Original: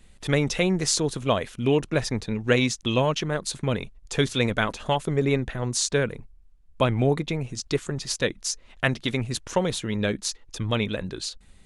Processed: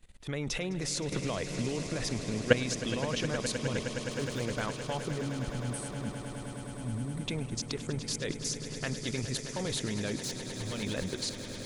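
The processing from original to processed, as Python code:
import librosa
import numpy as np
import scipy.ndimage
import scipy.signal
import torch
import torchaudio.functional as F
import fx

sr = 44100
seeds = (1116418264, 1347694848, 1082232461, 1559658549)

y = fx.median_filter(x, sr, points=15, at=(3.79, 4.61))
y = fx.level_steps(y, sr, step_db=17)
y = fx.spec_box(y, sr, start_s=5.23, length_s=1.99, low_hz=320.0, high_hz=7900.0, gain_db=-19)
y = fx.overload_stage(y, sr, gain_db=34.5, at=(10.2, 10.83))
y = fx.echo_swell(y, sr, ms=104, loudest=8, wet_db=-14.5)
y = fx.band_squash(y, sr, depth_pct=100, at=(1.12, 1.87))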